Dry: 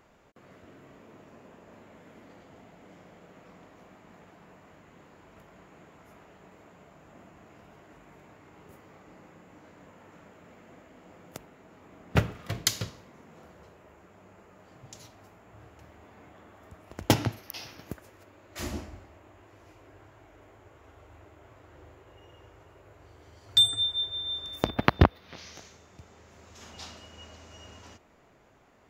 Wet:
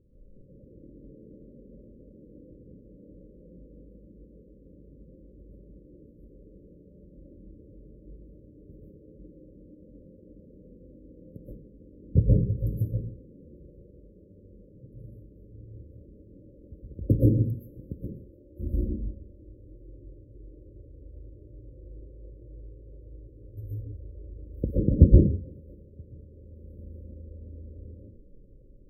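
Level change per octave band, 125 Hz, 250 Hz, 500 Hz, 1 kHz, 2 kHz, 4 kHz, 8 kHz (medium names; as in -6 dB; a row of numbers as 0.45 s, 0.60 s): +8.0 dB, +5.0 dB, +0.5 dB, under -40 dB, under -40 dB, under -40 dB, under -30 dB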